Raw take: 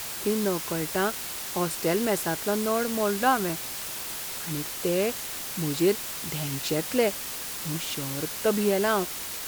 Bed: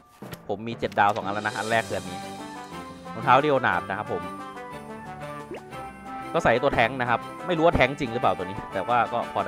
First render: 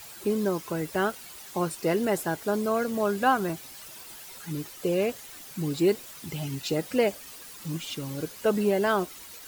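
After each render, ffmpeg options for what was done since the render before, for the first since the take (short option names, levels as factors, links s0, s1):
-af "afftdn=nr=12:nf=-35"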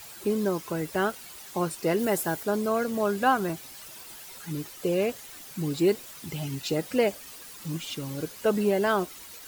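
-filter_complex "[0:a]asettb=1/sr,asplit=3[s0][s1][s2];[s0]atrim=end=1.994[s3];[s1]atrim=start=1.99:end=2.43,asetpts=PTS-STARTPTS,afade=t=in:d=0.004:c=qsin,afade=t=out:st=0.436:d=0.004:c=qsin,highshelf=f=9000:g=8[s4];[s2]atrim=start=2.426[s5];[s3][s4]acrossfade=d=0.004:c1=hsin:c2=qsin[s6];[s6][s5]acrossfade=d=0.004:c1=qsin:c2=hsin"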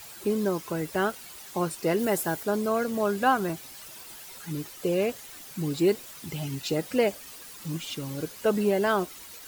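-af anull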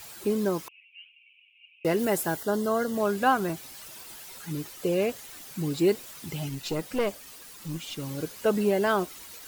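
-filter_complex "[0:a]asettb=1/sr,asplit=3[s0][s1][s2];[s0]atrim=end=0.684[s3];[s1]atrim=start=0.68:end=1.85,asetpts=PTS-STARTPTS,afade=t=in:d=0.004:c=qsin,afade=t=out:st=1.166:d=0.004:c=qsin,asuperpass=centerf=2600:order=8:qfactor=4.1[s4];[s2]atrim=start=1.846[s5];[s3][s4]acrossfade=d=0.004:c1=hsin:c2=qsin[s6];[s6][s5]acrossfade=d=0.004:c1=qsin:c2=hsin,asettb=1/sr,asplit=3[s7][s8][s9];[s7]atrim=end=2.374[s10];[s8]atrim=start=2.37:end=2.96,asetpts=PTS-STARTPTS,afade=t=in:d=0.004:c=qsin,afade=t=out:st=0.586:d=0.004:c=qsin,asuperstop=centerf=2400:order=12:qfactor=4[s11];[s9]atrim=start=2.956[s12];[s10][s11]acrossfade=d=0.004:c1=hsin:c2=qsin[s13];[s13][s12]acrossfade=d=0.004:c1=qsin:c2=hsin,asettb=1/sr,asplit=3[s14][s15][s16];[s14]atrim=end=6.494[s17];[s15]atrim=start=6.49:end=7.99,asetpts=PTS-STARTPTS,afade=t=in:d=0.004:c=qsin,afade=t=out:st=1.496:d=0.004:c=qsin,aeval=exprs='(tanh(8.91*val(0)+0.5)-tanh(0.5))/8.91':c=same[s18];[s16]atrim=start=7.986[s19];[s17][s18]acrossfade=d=0.004:c1=hsin:c2=qsin[s20];[s20][s19]acrossfade=d=0.004:c1=qsin:c2=hsin"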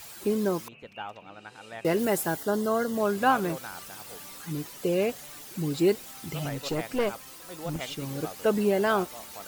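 -filter_complex "[1:a]volume=0.119[s0];[0:a][s0]amix=inputs=2:normalize=0"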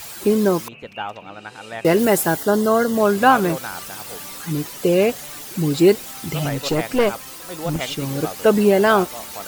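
-af "volume=2.99,alimiter=limit=0.891:level=0:latency=1"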